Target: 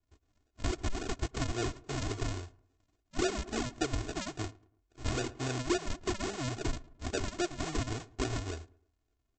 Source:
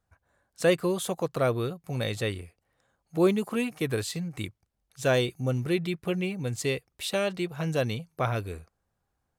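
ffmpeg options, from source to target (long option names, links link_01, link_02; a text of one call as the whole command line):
ffmpeg -i in.wav -filter_complex "[0:a]aresample=16000,acrusher=samples=29:mix=1:aa=0.000001:lfo=1:lforange=29:lforate=3.6,aresample=44100,highshelf=frequency=5900:gain=9,asplit=2[link_01][link_02];[link_02]adelay=109,lowpass=frequency=1600:poles=1,volume=-22dB,asplit=2[link_03][link_04];[link_04]adelay=109,lowpass=frequency=1600:poles=1,volume=0.4,asplit=2[link_05][link_06];[link_06]adelay=109,lowpass=frequency=1600:poles=1,volume=0.4[link_07];[link_01][link_03][link_05][link_07]amix=inputs=4:normalize=0,acompressor=threshold=-27dB:ratio=10,aecho=1:1:2.8:0.83,volume=-3.5dB" out.wav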